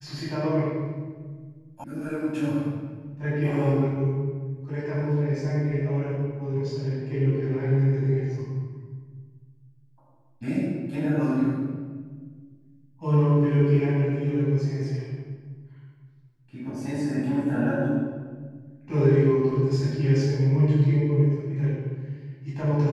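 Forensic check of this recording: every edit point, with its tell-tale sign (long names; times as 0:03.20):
0:01.84: cut off before it has died away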